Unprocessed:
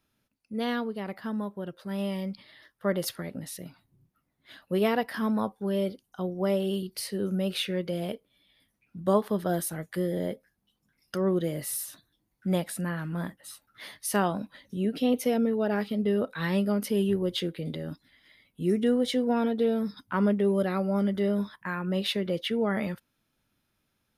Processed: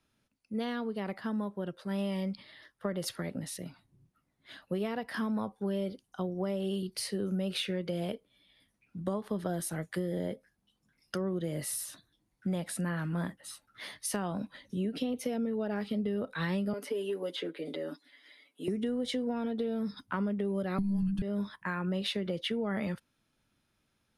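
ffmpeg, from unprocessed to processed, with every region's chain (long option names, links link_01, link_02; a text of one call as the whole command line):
ffmpeg -i in.wav -filter_complex "[0:a]asettb=1/sr,asplit=3[link_01][link_02][link_03];[link_01]atrim=end=16.734[link_04];[link_02]atrim=start=16.73:end=18.68,asetpts=PTS-STARTPTS,afade=type=in:duration=0.004:curve=qsin,afade=type=out:start_time=1.946:duration=0.004:curve=qsin,aecho=1:1:6.9:0.69,atrim=end_sample=85995,acrossover=split=390|2400[link_05][link_06][link_07];[link_05]acompressor=threshold=-30dB:ratio=4[link_08];[link_06]acompressor=threshold=-33dB:ratio=4[link_09];[link_07]acompressor=threshold=-47dB:ratio=4[link_10];[link_08][link_09][link_10]amix=inputs=3:normalize=0,highpass=frequency=280:width=0.5412,highpass=frequency=280:width=1.3066[link_11];[link_03]atrim=start=18.676[link_12];[link_04][link_11]acrossfade=duration=0.004:curve1=hsin:curve2=qsin[link_13];[link_13][link_12]acrossfade=duration=0.004:curve1=qsin:curve2=hsin,asettb=1/sr,asplit=3[link_14][link_15][link_16];[link_14]atrim=end=20.784[link_17];[link_15]atrim=start=20.78:end=21.22,asetpts=PTS-STARTPTS,afade=type=in:duration=0.004:curve=qsin,afade=type=out:start_time=0.436:duration=0.004:curve=qsin,bass=frequency=250:gain=14,treble=frequency=4000:gain=11,afreqshift=-390[link_18];[link_16]atrim=start=21.216[link_19];[link_17][link_18]acrossfade=duration=0.004:curve1=hsin:curve2=qsin[link_20];[link_20][link_19]acrossfade=duration=0.004:curve1=qsin:curve2=hsin,acrossover=split=160[link_21][link_22];[link_22]acompressor=threshold=-29dB:ratio=6[link_23];[link_21][link_23]amix=inputs=2:normalize=0,lowpass=frequency=11000:width=0.5412,lowpass=frequency=11000:width=1.3066,acompressor=threshold=-28dB:ratio=6" out.wav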